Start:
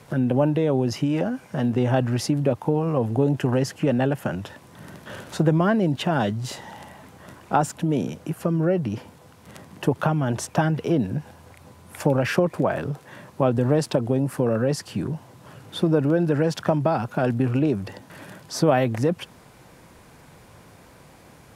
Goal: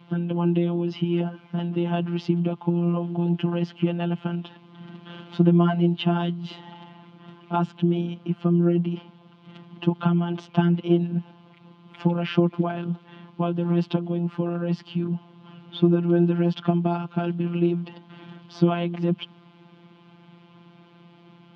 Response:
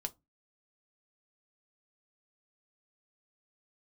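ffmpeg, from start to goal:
-af "afftfilt=real='hypot(re,im)*cos(PI*b)':imag='0':win_size=1024:overlap=0.75,highpass=120,equalizer=frequency=140:width_type=q:width=4:gain=6,equalizer=frequency=200:width_type=q:width=4:gain=7,equalizer=frequency=320:width_type=q:width=4:gain=5,equalizer=frequency=540:width_type=q:width=4:gain=-9,equalizer=frequency=1800:width_type=q:width=4:gain=-9,equalizer=frequency=3100:width_type=q:width=4:gain=8,lowpass=frequency=3700:width=0.5412,lowpass=frequency=3700:width=1.3066"

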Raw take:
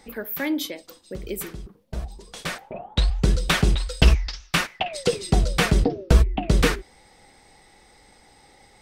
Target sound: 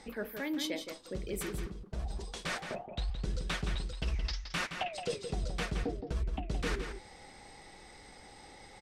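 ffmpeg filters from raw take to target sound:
ffmpeg -i in.wav -filter_complex "[0:a]lowpass=9100,areverse,acompressor=threshold=-34dB:ratio=5,areverse,asplit=2[link_01][link_02];[link_02]adelay=169.1,volume=-7dB,highshelf=frequency=4000:gain=-3.8[link_03];[link_01][link_03]amix=inputs=2:normalize=0" out.wav

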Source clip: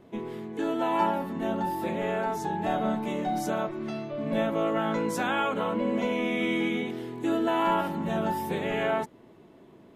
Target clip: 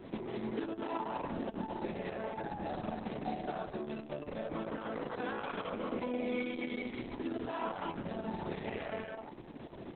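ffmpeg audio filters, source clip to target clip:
ffmpeg -i in.wav -filter_complex "[0:a]bandreject=frequency=7100:width=8.6,acompressor=threshold=-41dB:ratio=16,asplit=2[link_01][link_02];[link_02]aecho=0:1:186.6|239.1|271.1:0.355|0.398|0.398[link_03];[link_01][link_03]amix=inputs=2:normalize=0,volume=6dB" -ar 48000 -c:a libopus -b:a 6k out.opus

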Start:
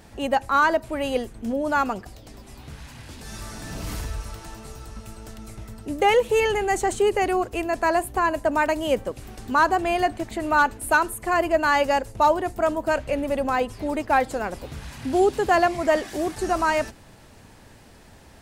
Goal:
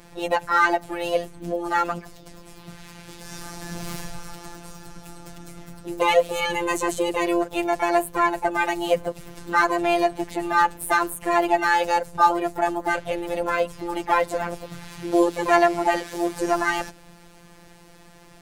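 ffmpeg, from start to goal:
ffmpeg -i in.wav -filter_complex "[0:a]asplit=2[link_01][link_02];[link_02]asetrate=58866,aresample=44100,atempo=0.749154,volume=-7dB[link_03];[link_01][link_03]amix=inputs=2:normalize=0,afftfilt=real='hypot(re,im)*cos(PI*b)':imag='0':win_size=1024:overlap=0.75,volume=3dB" out.wav

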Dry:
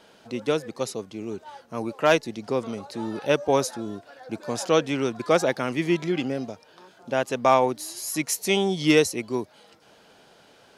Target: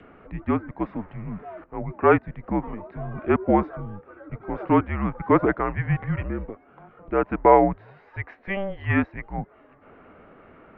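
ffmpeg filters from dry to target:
ffmpeg -i in.wav -filter_complex "[0:a]asettb=1/sr,asplit=3[link_01][link_02][link_03];[link_01]atrim=end=0.834[link_04];[link_02]atrim=start=0.83:end=1.64,asetpts=PTS-STARTPTS,afade=type=in:duration=0.004:curve=qsin,afade=type=out:start_time=0.806:duration=0.004:curve=qsin,aeval=exprs='val(0)+0.5*0.00944*sgn(val(0))':channel_layout=same[link_05];[link_03]atrim=start=1.636[link_06];[link_04][link_05]acrossfade=duration=0.004:curve1=hsin:curve2=qsin[link_07];[link_07][link_06]acrossfade=duration=0.004:curve1=qsin:curve2=hsin,adynamicequalizer=threshold=0.0178:dfrequency=1100:dqfactor=0.78:tfrequency=1100:tqfactor=0.78:attack=5:release=100:ratio=0.375:range=3.5:mode=boostabove:tftype=bell,highpass=frequency=230:width_type=q:width=0.5412,highpass=frequency=230:width_type=q:width=1.307,lowpass=frequency=2300:width_type=q:width=0.5176,lowpass=frequency=2300:width_type=q:width=0.7071,lowpass=frequency=2300:width_type=q:width=1.932,afreqshift=-200,acompressor=mode=upward:threshold=-40dB:ratio=2.5,asettb=1/sr,asplit=3[link_08][link_09][link_10];[link_08]atrim=end=7.974[link_11];[link_09]atrim=start=7.97:end=9.38,asetpts=PTS-STARTPTS,afade=type=in:duration=0.004:curve=qsin,afade=type=out:start_time=1.406:duration=0.004:curve=qsin,equalizer=frequency=170:width_type=o:width=0.99:gain=-11.5[link_12];[link_10]atrim=start=9.376[link_13];[link_11][link_12]acrossfade=duration=0.004:curve1=hsin:curve2=qsin[link_14];[link_14][link_13]acrossfade=duration=0.004:curve1=qsin:curve2=hsin,volume=-1dB" out.wav

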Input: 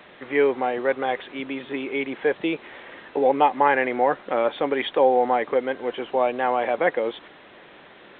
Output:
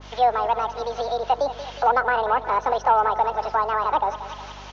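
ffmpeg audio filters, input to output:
ffmpeg -i in.wav -filter_complex "[0:a]highpass=130,asetrate=76440,aresample=44100,aecho=1:1:182|364|546|728|910|1092:0.2|0.11|0.0604|0.0332|0.0183|0.01,acrossover=split=190|350|1300[link_01][link_02][link_03][link_04];[link_04]acompressor=threshold=-41dB:ratio=12[link_05];[link_01][link_02][link_03][link_05]amix=inputs=4:normalize=0,aeval=exprs='val(0)+0.00501*(sin(2*PI*50*n/s)+sin(2*PI*2*50*n/s)/2+sin(2*PI*3*50*n/s)/3+sin(2*PI*4*50*n/s)/4+sin(2*PI*5*50*n/s)/5)':channel_layout=same,acontrast=84,adynamicequalizer=threshold=0.0398:dfrequency=1600:dqfactor=0.7:tfrequency=1600:tqfactor=0.7:attack=5:release=100:ratio=0.375:range=1.5:mode=cutabove:tftype=highshelf,volume=-3.5dB" out.wav

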